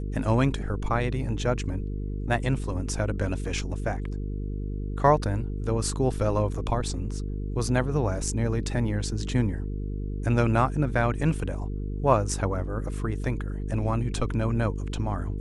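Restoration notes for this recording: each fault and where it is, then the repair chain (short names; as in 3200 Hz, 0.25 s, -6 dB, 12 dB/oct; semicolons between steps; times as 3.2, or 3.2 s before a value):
buzz 50 Hz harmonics 9 -31 dBFS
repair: de-hum 50 Hz, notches 9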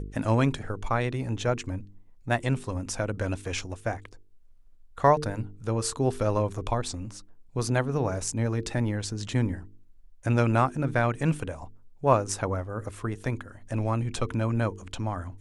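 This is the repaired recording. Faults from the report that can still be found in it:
none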